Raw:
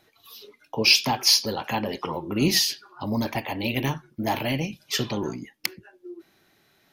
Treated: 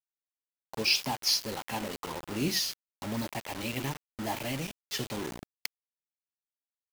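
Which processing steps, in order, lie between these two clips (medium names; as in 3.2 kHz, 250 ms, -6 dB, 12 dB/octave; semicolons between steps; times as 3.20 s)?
bit crusher 5-bit; trim -8.5 dB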